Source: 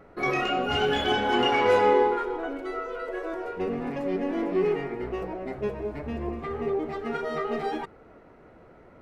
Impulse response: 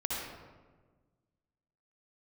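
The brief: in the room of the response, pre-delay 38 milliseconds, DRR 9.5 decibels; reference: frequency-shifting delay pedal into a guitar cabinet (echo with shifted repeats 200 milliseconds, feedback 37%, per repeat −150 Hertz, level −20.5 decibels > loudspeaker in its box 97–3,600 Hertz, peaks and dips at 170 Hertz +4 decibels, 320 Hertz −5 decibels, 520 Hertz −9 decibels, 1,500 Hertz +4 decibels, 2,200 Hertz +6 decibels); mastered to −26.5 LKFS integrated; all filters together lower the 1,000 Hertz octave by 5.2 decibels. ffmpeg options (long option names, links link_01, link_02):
-filter_complex "[0:a]equalizer=frequency=1000:width_type=o:gain=-7,asplit=2[link_01][link_02];[1:a]atrim=start_sample=2205,adelay=38[link_03];[link_02][link_03]afir=irnorm=-1:irlink=0,volume=-14.5dB[link_04];[link_01][link_04]amix=inputs=2:normalize=0,asplit=4[link_05][link_06][link_07][link_08];[link_06]adelay=200,afreqshift=-150,volume=-20.5dB[link_09];[link_07]adelay=400,afreqshift=-300,volume=-29.1dB[link_10];[link_08]adelay=600,afreqshift=-450,volume=-37.8dB[link_11];[link_05][link_09][link_10][link_11]amix=inputs=4:normalize=0,highpass=97,equalizer=frequency=170:width_type=q:width=4:gain=4,equalizer=frequency=320:width_type=q:width=4:gain=-5,equalizer=frequency=520:width_type=q:width=4:gain=-9,equalizer=frequency=1500:width_type=q:width=4:gain=4,equalizer=frequency=2200:width_type=q:width=4:gain=6,lowpass=frequency=3600:width=0.5412,lowpass=frequency=3600:width=1.3066,volume=2.5dB"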